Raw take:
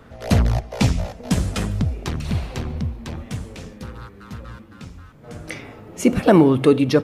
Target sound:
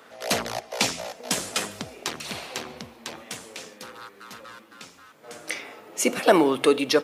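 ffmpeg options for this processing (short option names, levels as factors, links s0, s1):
-af "highpass=430,highshelf=f=2500:g=7.5,volume=0.891"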